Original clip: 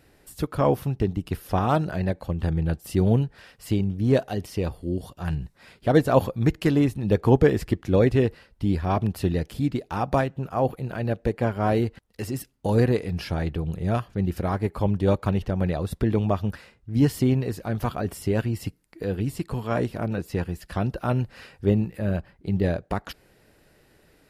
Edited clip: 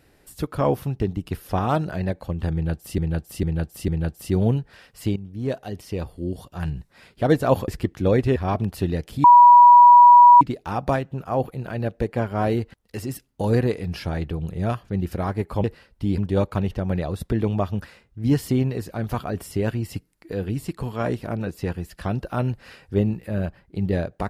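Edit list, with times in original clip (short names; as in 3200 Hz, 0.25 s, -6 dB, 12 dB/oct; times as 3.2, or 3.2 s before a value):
2.53–2.98 loop, 4 plays
3.81–5.32 fade in equal-power, from -12.5 dB
6.33–7.56 cut
8.24–8.78 move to 14.89
9.66 add tone 970 Hz -6 dBFS 1.17 s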